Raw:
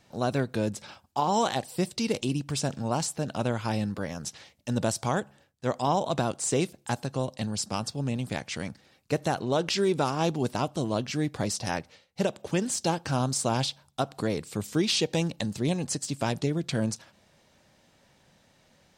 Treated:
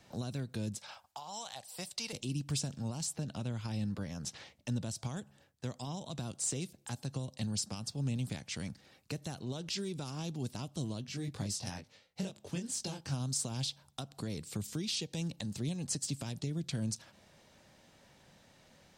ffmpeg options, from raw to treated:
ffmpeg -i in.wav -filter_complex "[0:a]asettb=1/sr,asplit=3[link_01][link_02][link_03];[link_01]atrim=end=0.784[link_04];[link_02]atrim=start=0.78:end=2.13,asetpts=PTS-STARTPTS,afade=type=in:duration=0.004:curve=qsin,afade=type=out:start_time=1.346:duration=0.004:curve=qsin,lowshelf=frequency=470:width_type=q:width=1.5:gain=-12.5[link_05];[link_03]atrim=start=2.126[link_06];[link_04][link_05]acrossfade=duration=0.004:curve1=hsin:curve2=qsin[link_07];[link_07][link_06]acrossfade=duration=0.004:curve1=qsin:curve2=hsin,asettb=1/sr,asplit=3[link_08][link_09][link_10];[link_08]atrim=end=3.134[link_11];[link_09]atrim=start=3.13:end=5.09,asetpts=PTS-STARTPTS,afade=type=in:duration=0.004:curve=qsin,afade=type=out:start_time=1.956:duration=0.004:curve=qsin,highshelf=frequency=6300:gain=-7[link_12];[link_10]atrim=start=5.086[link_13];[link_11][link_12]acrossfade=duration=0.004:curve1=hsin:curve2=qsin[link_14];[link_14][link_13]acrossfade=duration=0.004:curve1=qsin:curve2=hsin,asplit=3[link_15][link_16][link_17];[link_15]afade=type=out:start_time=11.03:duration=0.02[link_18];[link_16]flanger=delay=20:depth=2.1:speed=2.1,afade=type=in:start_time=11.03:duration=0.02,afade=type=out:start_time=13.13:duration=0.02[link_19];[link_17]afade=type=in:start_time=13.13:duration=0.02[link_20];[link_18][link_19][link_20]amix=inputs=3:normalize=0,alimiter=limit=-23dB:level=0:latency=1:release=429,acrossover=split=230|3000[link_21][link_22][link_23];[link_22]acompressor=threshold=-47dB:ratio=4[link_24];[link_21][link_24][link_23]amix=inputs=3:normalize=0" out.wav

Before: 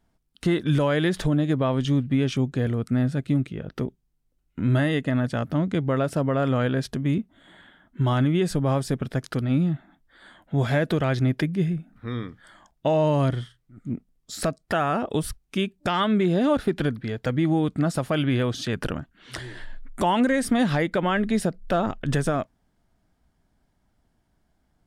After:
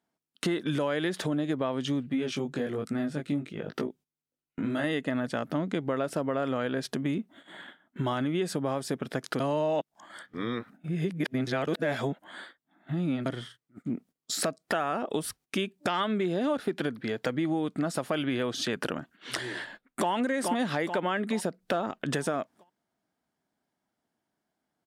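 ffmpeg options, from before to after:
ffmpeg -i in.wav -filter_complex "[0:a]asettb=1/sr,asplit=3[link_01][link_02][link_03];[link_01]atrim=end=2.094[link_04];[link_02]atrim=start=2.09:end=4.84,asetpts=PTS-STARTPTS,afade=type=in:duration=0.004:curve=qsin,afade=type=out:start_time=2.746:duration=0.004:curve=qsin,flanger=delay=18.5:depth=2.5:speed=1.2[link_05];[link_03]atrim=start=4.836[link_06];[link_04][link_05]acrossfade=duration=0.004:curve1=hsin:curve2=qsin[link_07];[link_07][link_06]acrossfade=duration=0.004:curve1=qsin:curve2=hsin,asplit=2[link_08][link_09];[link_09]afade=type=in:start_time=19.56:duration=0.01,afade=type=out:start_time=20.11:duration=0.01,aecho=0:1:430|860|1290|1720|2150|2580:0.595662|0.268048|0.120622|0.0542797|0.0244259|0.0109916[link_10];[link_08][link_10]amix=inputs=2:normalize=0,asplit=3[link_11][link_12][link_13];[link_11]atrim=end=9.402[link_14];[link_12]atrim=start=9.398:end=13.262,asetpts=PTS-STARTPTS,areverse[link_15];[link_13]atrim=start=13.258[link_16];[link_14][link_15]acrossfade=duration=0.004:curve1=hsin:curve2=hsin[link_17];[link_17][link_16]acrossfade=duration=0.004:curve1=hsin:curve2=hsin,highpass=240,agate=range=-14dB:threshold=-52dB:ratio=16:detection=peak,acompressor=threshold=-36dB:ratio=3,volume=6.5dB" out.wav

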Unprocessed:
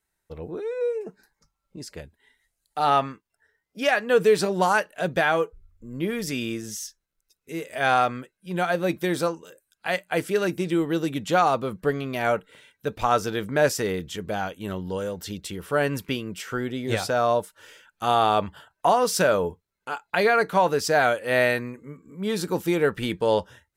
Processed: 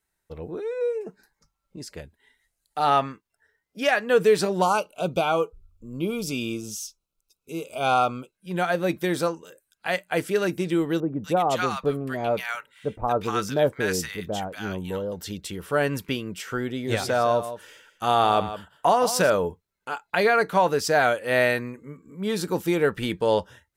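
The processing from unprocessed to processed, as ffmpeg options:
ffmpeg -i in.wav -filter_complex "[0:a]asettb=1/sr,asplit=3[link_01][link_02][link_03];[link_01]atrim=end=4.624[link_04];[link_02]atrim=start=4.62:end=8.35,asetpts=PTS-STARTPTS,afade=type=in:duration=0.004:curve=qsin,afade=type=out:start_time=3.726:duration=0.004:curve=qsin,asuperstop=centerf=1800:order=8:qfactor=2.2[link_05];[link_03]atrim=start=8.346[link_06];[link_04][link_05]acrossfade=duration=0.004:curve1=hsin:curve2=qsin[link_07];[link_07][link_06]acrossfade=duration=0.004:curve1=qsin:curve2=hsin,asettb=1/sr,asplit=3[link_08][link_09][link_10];[link_08]atrim=end=11.004[link_11];[link_09]atrim=start=11:end=15.12,asetpts=PTS-STARTPTS,afade=type=in:duration=0.004:curve=qsin,afade=type=out:start_time=4.116:duration=0.004:curve=qsin,acrossover=split=1100[link_12][link_13];[link_13]adelay=240[link_14];[link_12][link_14]amix=inputs=2:normalize=0,atrim=end_sample=181692[link_15];[link_10]atrim=start=15.116[link_16];[link_11][link_15]acrossfade=duration=0.004:curve1=hsin:curve2=qsin[link_17];[link_17][link_16]acrossfade=duration=0.004:curve1=qsin:curve2=hsin,asettb=1/sr,asplit=3[link_18][link_19][link_20];[link_18]atrim=end=16.744[link_21];[link_19]atrim=start=16.74:end=19.3,asetpts=PTS-STARTPTS,afade=type=in:duration=0.004:curve=qsin,afade=type=out:start_time=2.556:duration=0.004:curve=qsin,aecho=1:1:161:0.251,atrim=end_sample=112896[link_22];[link_20]atrim=start=19.296[link_23];[link_21][link_22]acrossfade=duration=0.004:curve1=hsin:curve2=qsin[link_24];[link_24][link_23]acrossfade=duration=0.004:curve1=qsin:curve2=hsin" out.wav

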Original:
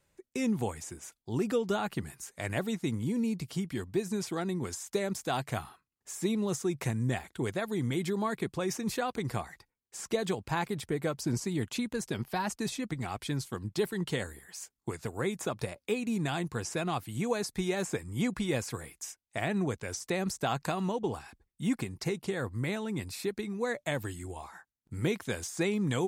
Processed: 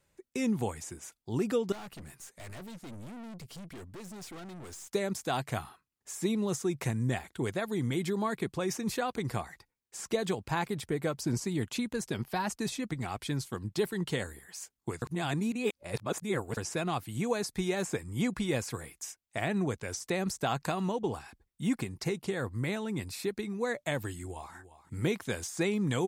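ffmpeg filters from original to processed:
ffmpeg -i in.wav -filter_complex "[0:a]asettb=1/sr,asplit=3[link_01][link_02][link_03];[link_01]atrim=end=1.724[link_04];[link_02]atrim=start=1.72:end=4.93,asetpts=PTS-STARTPTS,afade=type=in:duration=0.004:curve=qsin,afade=type=out:start_time=3.206:duration=0.004:curve=qsin,aeval=exprs='(tanh(141*val(0)+0.35)-tanh(0.35))/141':channel_layout=same[link_05];[link_03]atrim=start=4.926[link_06];[link_04][link_05]acrossfade=duration=0.004:curve1=hsin:curve2=qsin[link_07];[link_07][link_06]acrossfade=duration=0.004:curve1=qsin:curve2=hsin,asplit=2[link_08][link_09];[link_09]afade=type=in:start_time=24.14:duration=0.01,afade=type=out:start_time=24.54:duration=0.01,aecho=0:1:350|700|1050:0.188365|0.0565095|0.0169528[link_10];[link_08][link_10]amix=inputs=2:normalize=0,asplit=3[link_11][link_12][link_13];[link_11]atrim=end=15.022[link_14];[link_12]atrim=start=15.018:end=16.572,asetpts=PTS-STARTPTS,areverse[link_15];[link_13]atrim=start=16.568[link_16];[link_14][link_15]acrossfade=duration=0.004:curve1=hsin:curve2=hsin[link_17];[link_17][link_16]acrossfade=duration=0.004:curve1=hsin:curve2=hsin" out.wav

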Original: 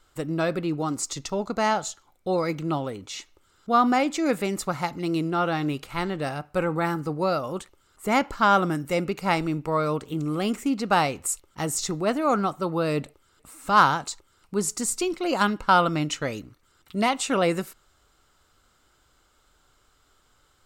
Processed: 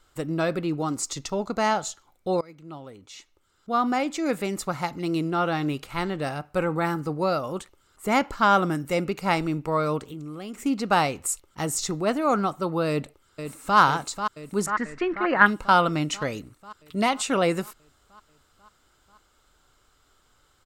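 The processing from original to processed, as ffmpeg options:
ffmpeg -i in.wav -filter_complex "[0:a]asettb=1/sr,asplit=3[link_01][link_02][link_03];[link_01]atrim=end=10.064[link_04];[link_02]atrim=start=10.06:end=10.6,asetpts=PTS-STARTPTS,afade=type=in:duration=0.004:curve=qsin,afade=type=out:start_time=0.536:duration=0.004:curve=qsin,acompressor=threshold=-38dB:ratio=2.5:attack=3.2:release=140:knee=1:detection=peak[link_05];[link_03]atrim=start=10.596[link_06];[link_04][link_05]acrossfade=duration=0.004:curve1=hsin:curve2=qsin[link_07];[link_07][link_06]acrossfade=duration=0.004:curve1=qsin:curve2=hsin,asplit=2[link_08][link_09];[link_09]afade=type=in:start_time=12.89:duration=0.01,afade=type=out:start_time=13.78:duration=0.01,aecho=0:1:490|980|1470|1960|2450|2940|3430|3920|4410|4900|5390:0.398107|0.278675|0.195073|0.136551|0.0955855|0.0669099|0.0468369|0.0327858|0.0229501|0.0160651|0.0112455[link_10];[link_08][link_10]amix=inputs=2:normalize=0,asettb=1/sr,asplit=3[link_11][link_12][link_13];[link_11]atrim=end=14.664[link_14];[link_12]atrim=start=14.66:end=15.46,asetpts=PTS-STARTPTS,afade=type=in:duration=0.004:curve=qsin,afade=type=out:start_time=0.796:duration=0.004:curve=qsin,lowpass=frequency=1800:width_type=q:width=6.2[link_15];[link_13]atrim=start=15.456[link_16];[link_14][link_15]acrossfade=duration=0.004:curve1=hsin:curve2=qsin[link_17];[link_17][link_16]acrossfade=duration=0.004:curve1=qsin:curve2=hsin,asplit=2[link_18][link_19];[link_18]atrim=end=2.41,asetpts=PTS-STARTPTS,afade=type=out:start_time=2.406:duration=0.004:curve=hsin:silence=0.0707946[link_20];[link_19]atrim=start=2.41,asetpts=PTS-STARTPTS,afade=type=in:duration=3.29:curve=qsin:silence=0.0707946[link_21];[link_20][link_21]concat=n=2:v=0:a=1" out.wav

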